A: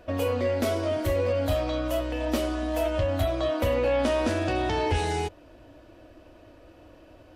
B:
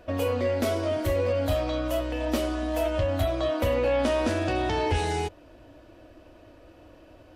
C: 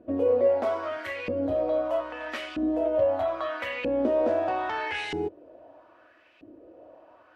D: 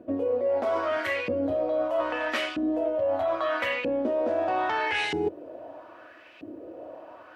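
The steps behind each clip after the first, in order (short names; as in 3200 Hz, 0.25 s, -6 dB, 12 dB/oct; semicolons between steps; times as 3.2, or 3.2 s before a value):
nothing audible
LFO band-pass saw up 0.78 Hz 260–2700 Hz; gain +7 dB
HPF 86 Hz; reverse; compressor 10:1, threshold -32 dBFS, peak gain reduction 14 dB; reverse; gain +8.5 dB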